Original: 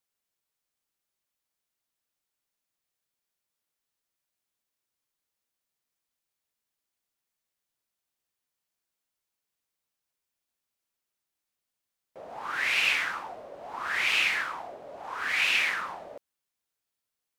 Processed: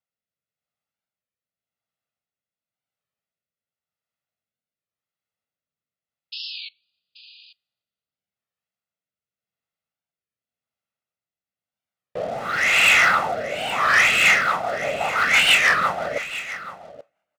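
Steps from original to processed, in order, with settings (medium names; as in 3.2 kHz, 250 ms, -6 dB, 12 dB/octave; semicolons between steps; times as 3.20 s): high-pass 120 Hz 12 dB/octave; tone controls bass +6 dB, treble -12 dB; comb 1.5 ms, depth 54%; waveshaping leveller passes 3; painted sound noise, 6.32–6.70 s, 2.4–5 kHz -38 dBFS; two-slope reverb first 0.22 s, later 1.5 s, from -18 dB, DRR 19.5 dB; rotary cabinet horn 0.9 Hz, later 6 Hz, at 13.71 s; delay 830 ms -14.5 dB; warped record 33 1/3 rpm, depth 160 cents; trim +5.5 dB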